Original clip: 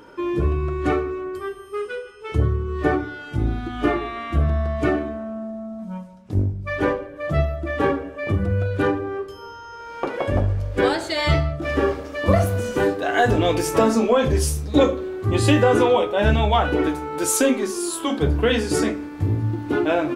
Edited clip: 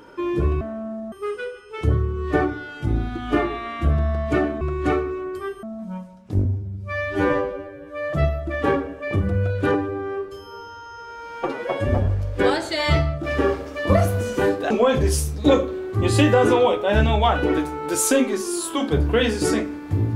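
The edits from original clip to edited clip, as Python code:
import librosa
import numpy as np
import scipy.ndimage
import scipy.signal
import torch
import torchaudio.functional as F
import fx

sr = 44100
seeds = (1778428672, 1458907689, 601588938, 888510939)

y = fx.edit(x, sr, fx.swap(start_s=0.61, length_s=1.02, other_s=5.12, other_length_s=0.51),
    fx.stretch_span(start_s=6.45, length_s=0.84, factor=2.0),
    fx.stretch_span(start_s=8.9, length_s=1.55, factor=1.5),
    fx.cut(start_s=13.09, length_s=0.91), tone=tone)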